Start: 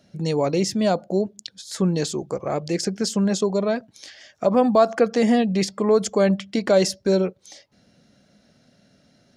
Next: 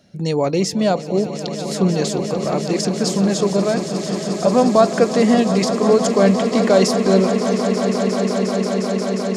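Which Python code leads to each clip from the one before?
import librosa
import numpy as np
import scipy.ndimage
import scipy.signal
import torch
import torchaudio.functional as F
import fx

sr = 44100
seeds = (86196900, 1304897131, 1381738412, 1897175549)

y = fx.echo_swell(x, sr, ms=178, loudest=8, wet_db=-13.0)
y = F.gain(torch.from_numpy(y), 3.0).numpy()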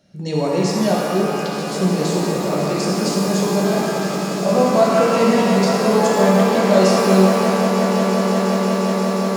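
y = fx.rev_shimmer(x, sr, seeds[0], rt60_s=2.1, semitones=12, shimmer_db=-8, drr_db=-3.5)
y = F.gain(torch.from_numpy(y), -5.5).numpy()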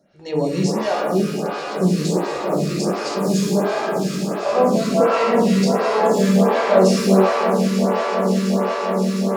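y = fx.high_shelf(x, sr, hz=9200.0, db=-5.0)
y = fx.stagger_phaser(y, sr, hz=1.4)
y = F.gain(torch.from_numpy(y), 1.5).numpy()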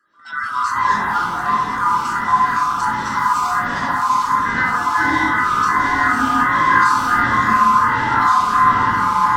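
y = fx.band_swap(x, sr, width_hz=1000)
y = fx.echo_pitch(y, sr, ms=125, semitones=-3, count=3, db_per_echo=-3.0)
y = fx.small_body(y, sr, hz=(250.0, 1000.0, 2000.0), ring_ms=30, db=12)
y = F.gain(torch.from_numpy(y), -5.5).numpy()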